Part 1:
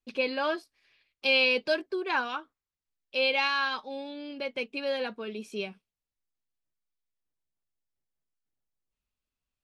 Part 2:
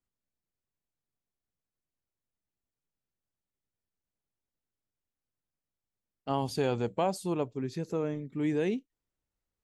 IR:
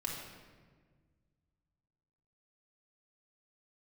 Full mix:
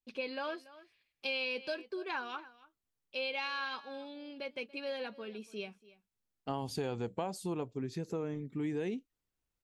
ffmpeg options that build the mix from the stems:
-filter_complex "[0:a]volume=-7dB,asplit=2[a][b];[b]volume=-20.5dB[c];[1:a]bandreject=f=590:w=12,adelay=200,volume=-1dB[d];[c]aecho=0:1:285:1[e];[a][d][e]amix=inputs=3:normalize=0,acompressor=threshold=-34dB:ratio=3"

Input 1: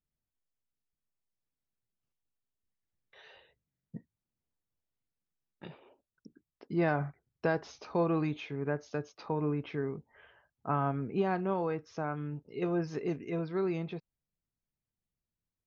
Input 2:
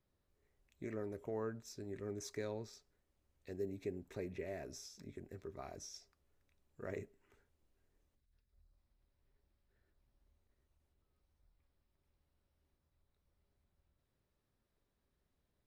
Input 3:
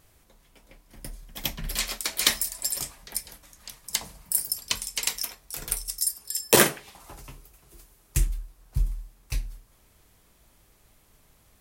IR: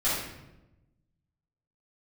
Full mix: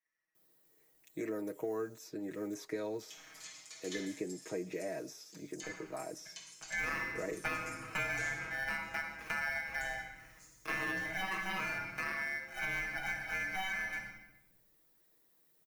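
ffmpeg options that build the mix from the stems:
-filter_complex "[0:a]acrusher=samples=29:mix=1:aa=0.000001,aeval=exprs='val(0)*sgn(sin(2*PI*1900*n/s))':c=same,volume=-9dB,asplit=2[a][b];[b]volume=-10dB[c];[1:a]aemphasis=mode=production:type=riaa,adelay=350,volume=0.5dB[d];[2:a]bandpass=f=6.6k:t=q:w=6.2:csg=0,adelay=1650,volume=-6.5dB,asplit=2[e][f];[f]volume=-4.5dB[g];[3:a]atrim=start_sample=2205[h];[c][g]amix=inputs=2:normalize=0[i];[i][h]afir=irnorm=-1:irlink=0[j];[a][d][e][j]amix=inputs=4:normalize=0,equalizer=f=310:t=o:w=2.7:g=10,aecho=1:1:6.3:0.98,acrossover=split=190|3100[k][l][m];[k]acompressor=threshold=-47dB:ratio=4[n];[l]acompressor=threshold=-35dB:ratio=4[o];[m]acompressor=threshold=-57dB:ratio=4[p];[n][o][p]amix=inputs=3:normalize=0"

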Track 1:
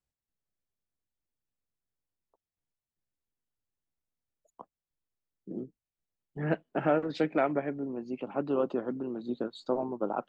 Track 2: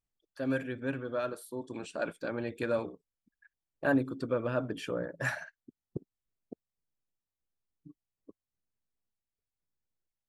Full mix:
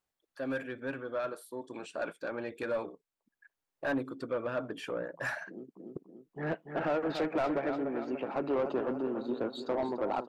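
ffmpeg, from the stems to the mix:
-filter_complex "[0:a]alimiter=limit=-19.5dB:level=0:latency=1:release=92,volume=-4dB,asplit=2[a][b];[b]volume=-11dB[c];[1:a]volume=-8.5dB,asplit=2[d][e];[e]apad=whole_len=453608[f];[a][f]sidechaincompress=threshold=-51dB:ratio=5:attack=12:release=721[g];[c]aecho=0:1:290|580|870|1160|1450|1740|2030:1|0.51|0.26|0.133|0.0677|0.0345|0.0176[h];[g][d][h]amix=inputs=3:normalize=0,asplit=2[i][j];[j]highpass=f=720:p=1,volume=19dB,asoftclip=type=tanh:threshold=-21dB[k];[i][k]amix=inputs=2:normalize=0,lowpass=f=1.4k:p=1,volume=-6dB,highshelf=f=7.7k:g=11.5"

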